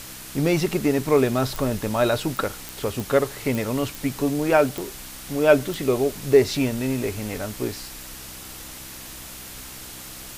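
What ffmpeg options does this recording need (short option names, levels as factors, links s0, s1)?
-af "adeclick=t=4,bandreject=f=64.3:t=h:w=4,bandreject=f=128.6:t=h:w=4,bandreject=f=192.9:t=h:w=4,bandreject=f=257.2:t=h:w=4,bandreject=f=321.5:t=h:w=4,afwtdn=0.013"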